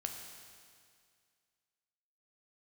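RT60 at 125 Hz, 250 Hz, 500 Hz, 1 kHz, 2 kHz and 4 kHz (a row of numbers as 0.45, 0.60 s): 2.1, 2.1, 2.1, 2.1, 2.1, 2.1 s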